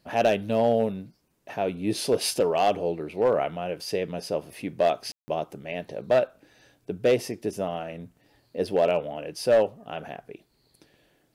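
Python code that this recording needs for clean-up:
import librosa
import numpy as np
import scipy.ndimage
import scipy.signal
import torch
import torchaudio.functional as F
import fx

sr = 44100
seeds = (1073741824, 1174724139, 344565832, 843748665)

y = fx.fix_declip(x, sr, threshold_db=-14.0)
y = fx.fix_ambience(y, sr, seeds[0], print_start_s=10.42, print_end_s=10.92, start_s=5.12, end_s=5.28)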